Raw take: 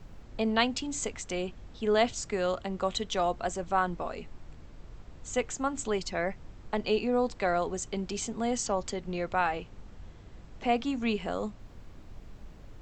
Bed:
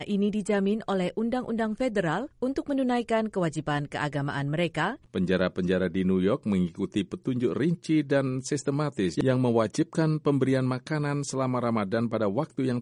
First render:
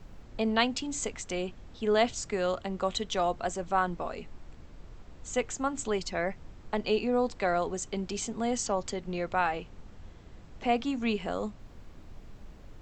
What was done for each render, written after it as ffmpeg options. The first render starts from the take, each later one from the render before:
-af "bandreject=f=50:t=h:w=4,bandreject=f=100:t=h:w=4,bandreject=f=150:t=h:w=4"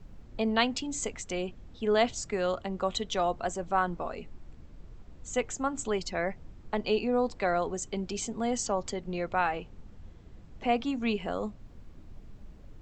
-af "afftdn=nr=6:nf=-50"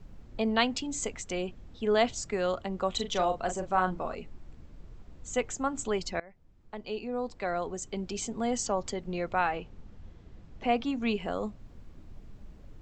-filter_complex "[0:a]asettb=1/sr,asplit=3[a][b][c];[a]atrim=end=2.914[d];[b]atrim=start=2.91:end=4.15,asetpts=PTS-STARTPTS,afade=t=in:d=0.004:c=qsin,afade=t=out:st=1.236:d=0.004:c=qsin,asplit=2[e][f];[f]adelay=38,volume=-7.5dB[g];[e][g]amix=inputs=2:normalize=0,atrim=end_sample=54684[h];[c]atrim=start=4.146[i];[d][h]acrossfade=d=0.004:c1=hsin:c2=qsin[j];[j][i]acrossfade=d=0.004:c1=qsin:c2=hsin,asettb=1/sr,asplit=3[k][l][m];[k]atrim=end=9.454[n];[l]atrim=start=9.45:end=11.02,asetpts=PTS-STARTPTS,afade=t=in:d=0.004:c=qsin,afade=t=out:st=1.566:d=0.004:c=qsin,lowpass=7.3k[o];[m]atrim=start=11.016[p];[n][o]acrossfade=d=0.004:c1=hsin:c2=qsin[q];[q][p]acrossfade=d=0.004:c1=qsin:c2=hsin,asplit=2[r][s];[r]atrim=end=6.2,asetpts=PTS-STARTPTS,afade=t=out:st=6.196:d=0.004:c=hsin:silence=0.0707946[t];[s]atrim=start=6.2,asetpts=PTS-STARTPTS,afade=t=in:d=2.16:silence=0.0707946[u];[t][u]concat=n=2:v=0:a=1"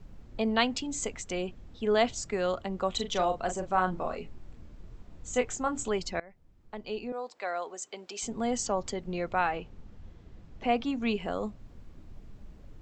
-filter_complex "[0:a]asettb=1/sr,asplit=3[a][b][c];[a]atrim=end=3.914[d];[b]atrim=start=3.91:end=5.89,asetpts=PTS-STARTPTS,afade=t=in:d=0.004:c=qsin,afade=t=out:st=1.976:d=0.004:c=qsin,asplit=2[e][f];[f]adelay=24,volume=-6.5dB[g];[e][g]amix=inputs=2:normalize=0,atrim=end_sample=87318[h];[c]atrim=start=5.886[i];[d][h]acrossfade=d=0.004:c1=hsin:c2=qsin[j];[j][i]acrossfade=d=0.004:c1=qsin:c2=hsin,asettb=1/sr,asplit=3[k][l][m];[k]atrim=end=7.124[n];[l]atrim=start=7.12:end=8.23,asetpts=PTS-STARTPTS,afade=t=in:d=0.004:c=qsin,afade=t=out:st=1.106:d=0.004:c=qsin,highpass=540[o];[m]atrim=start=8.226[p];[n][o]acrossfade=d=0.004:c1=hsin:c2=qsin[q];[q][p]acrossfade=d=0.004:c1=qsin:c2=hsin"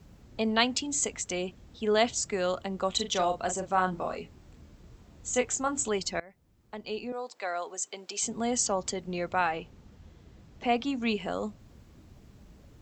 -af "highpass=53,highshelf=f=4.7k:g=9.5"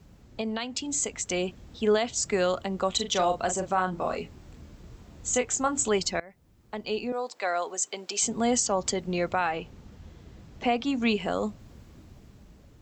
-af "alimiter=limit=-19dB:level=0:latency=1:release=291,dynaudnorm=f=460:g=5:m=5dB"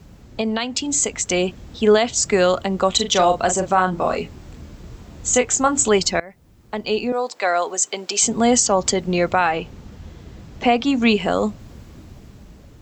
-af "volume=9dB"

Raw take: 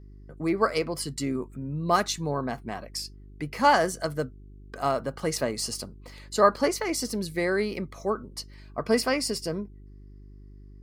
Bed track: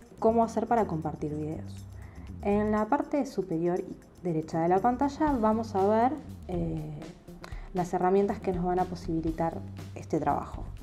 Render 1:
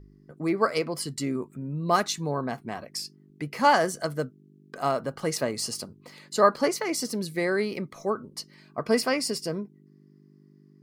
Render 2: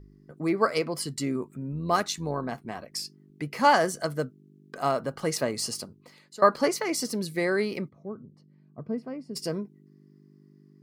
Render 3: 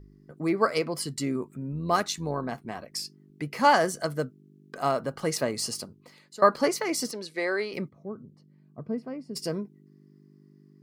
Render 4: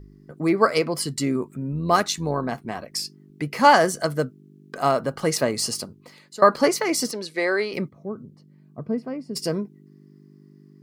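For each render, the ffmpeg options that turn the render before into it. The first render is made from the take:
-af "bandreject=f=50:t=h:w=4,bandreject=f=100:t=h:w=4"
-filter_complex "[0:a]asettb=1/sr,asplit=3[a][b][c];[a]atrim=end=1.724[d];[b]atrim=start=1.72:end=2.93,asetpts=PTS-STARTPTS,afade=t=in:d=0.004:c=qsin,afade=t=out:st=1.206:d=0.004:c=qsin,tremolo=f=87:d=0.4[e];[c]atrim=start=2.926[f];[d][e]acrossfade=d=0.004:c1=hsin:c2=qsin[g];[g][f]acrossfade=d=0.004:c1=qsin:c2=hsin,asplit=3[h][i][j];[h]afade=t=out:st=7.88:d=0.02[k];[i]bandpass=f=130:t=q:w=1.1,afade=t=in:st=7.88:d=0.02,afade=t=out:st=9.35:d=0.02[l];[j]afade=t=in:st=9.35:d=0.02[m];[k][l][m]amix=inputs=3:normalize=0,asplit=2[n][o];[n]atrim=end=6.42,asetpts=PTS-STARTPTS,afade=t=out:st=5.71:d=0.71:silence=0.141254[p];[o]atrim=start=6.42,asetpts=PTS-STARTPTS,afade=t=in:d=0.004:c=hsin:silence=0.141254[q];[p][q]concat=n=2:v=0:a=1"
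-filter_complex "[0:a]asettb=1/sr,asplit=3[a][b][c];[a]atrim=end=7.114[d];[b]atrim=start=7.11:end=7.74,asetpts=PTS-STARTPTS,afade=t=in:d=0.004:c=qsin,afade=t=out:st=0.626:d=0.004:c=qsin,highpass=410,lowpass=6.1k[e];[c]atrim=start=7.736[f];[d][e]acrossfade=d=0.004:c1=hsin:c2=qsin[g];[g][f]acrossfade=d=0.004:c1=qsin:c2=hsin"
-af "volume=5.5dB,alimiter=limit=-2dB:level=0:latency=1"

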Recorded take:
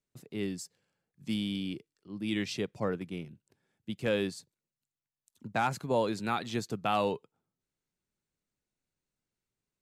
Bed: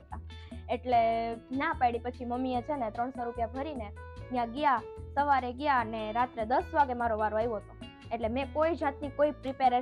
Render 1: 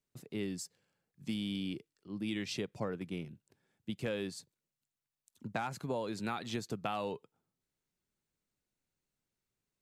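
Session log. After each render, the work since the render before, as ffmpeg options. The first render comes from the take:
-af "acompressor=threshold=-33dB:ratio=6"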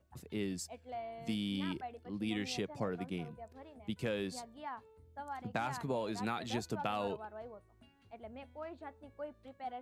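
-filter_complex "[1:a]volume=-17.5dB[a];[0:a][a]amix=inputs=2:normalize=0"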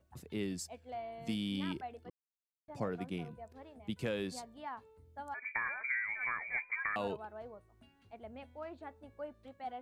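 -filter_complex "[0:a]asettb=1/sr,asplit=3[a][b][c];[a]atrim=end=5.344[d];[b]atrim=start=5.34:end=6.96,asetpts=PTS-STARTPTS,afade=t=in:d=0.004:c=qsin,afade=t=out:st=1.616:d=0.004:c=qsin,lowpass=f=2.1k:t=q:w=0.5098,lowpass=f=2.1k:t=q:w=0.6013,lowpass=f=2.1k:t=q:w=0.9,lowpass=f=2.1k:t=q:w=2.563,afreqshift=-2500[e];[c]atrim=start=6.956[f];[d][e]acrossfade=d=0.004:c1=hsin:c2=qsin[g];[g][f]acrossfade=d=0.004:c1=qsin:c2=hsin,asplit=3[h][i][j];[h]atrim=end=2.1,asetpts=PTS-STARTPTS,afade=t=out:st=2.096:d=0.004:c=hsin[k];[i]atrim=start=2.1:end=2.68,asetpts=PTS-STARTPTS,volume=0[l];[j]atrim=start=2.68,asetpts=PTS-STARTPTS,afade=t=in:d=0.004:c=hsin[m];[k][l][m]concat=n=3:v=0:a=1"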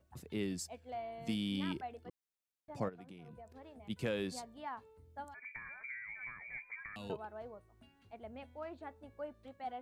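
-filter_complex "[0:a]asplit=3[a][b][c];[a]afade=t=out:st=2.88:d=0.02[d];[b]acompressor=threshold=-48dB:ratio=12:attack=3.2:release=140:knee=1:detection=peak,afade=t=in:st=2.88:d=0.02,afade=t=out:st=3.89:d=0.02[e];[c]afade=t=in:st=3.89:d=0.02[f];[d][e][f]amix=inputs=3:normalize=0,asettb=1/sr,asplit=3[g][h][i];[g]atrim=end=5.244[j];[h]atrim=start=5.24:end=7.1,asetpts=PTS-STARTPTS,afade=t=in:d=0.004:c=qsin,afade=t=out:st=1.856:d=0.004:c=qsin,acrossover=split=220|3000[k][l][m];[l]acompressor=threshold=-51dB:ratio=6:attack=3.2:release=140:knee=2.83:detection=peak[n];[k][n][m]amix=inputs=3:normalize=0[o];[i]atrim=start=7.096[p];[j][o]acrossfade=d=0.004:c1=hsin:c2=qsin[q];[q][p]acrossfade=d=0.004:c1=qsin:c2=hsin"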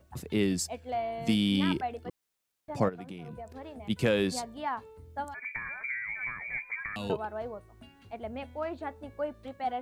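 -af "volume=10.5dB"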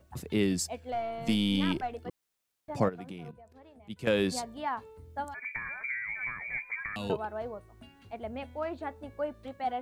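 -filter_complex "[0:a]asettb=1/sr,asplit=3[a][b][c];[a]atrim=end=0.924[d];[b]atrim=start=0.92:end=1.95,asetpts=PTS-STARTPTS,afade=t=in:d=0.004:c=qsin,afade=t=out:st=1.026:d=0.004:c=qsin,aeval=exprs='if(lt(val(0),0),0.708*val(0),val(0))':c=same[e];[c]atrim=start=1.946[f];[d][e]acrossfade=d=0.004:c1=hsin:c2=qsin[g];[g][f]acrossfade=d=0.004:c1=qsin:c2=hsin,asplit=3[h][i][j];[h]atrim=end=3.312[k];[i]atrim=start=3.308:end=4.072,asetpts=PTS-STARTPTS,volume=-11dB[l];[j]atrim=start=4.068[m];[k][l]acrossfade=d=0.004:c1=hsin:c2=hsin[n];[n][m]acrossfade=d=0.004:c1=hsin:c2=hsin"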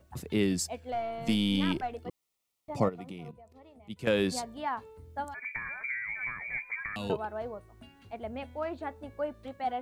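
-filter_complex "[0:a]asettb=1/sr,asplit=3[a][b][c];[a]atrim=end=2.014[d];[b]atrim=start=2.01:end=4,asetpts=PTS-STARTPTS,afade=t=in:d=0.004:c=qsin,afade=t=out:st=1.986:d=0.004:c=qsin,asuperstop=centerf=1600:order=4:qfactor=4.2[e];[c]atrim=start=3.996[f];[d][e]acrossfade=d=0.004:c1=hsin:c2=qsin[g];[g][f]acrossfade=d=0.004:c1=qsin:c2=hsin"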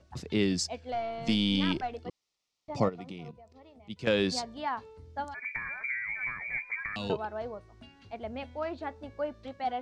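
-af "lowpass=f=5.3k:t=q:w=1.9"

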